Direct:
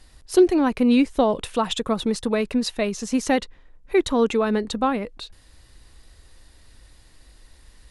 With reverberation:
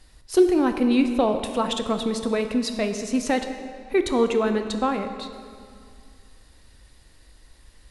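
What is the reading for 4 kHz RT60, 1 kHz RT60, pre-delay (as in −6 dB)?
1.6 s, 2.3 s, 14 ms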